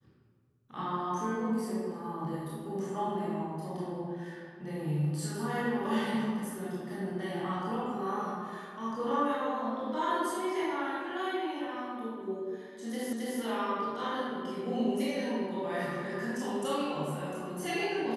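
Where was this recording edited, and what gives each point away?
0:13.13: the same again, the last 0.27 s

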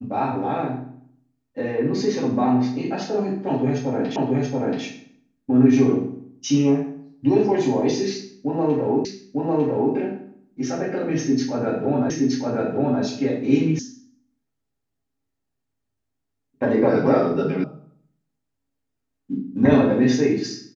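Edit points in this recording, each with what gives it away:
0:04.16: the same again, the last 0.68 s
0:09.05: the same again, the last 0.9 s
0:12.10: the same again, the last 0.92 s
0:13.79: cut off before it has died away
0:17.64: cut off before it has died away

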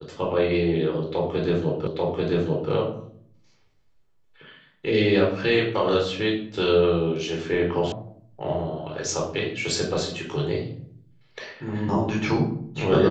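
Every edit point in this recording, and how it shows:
0:01.87: the same again, the last 0.84 s
0:07.92: cut off before it has died away

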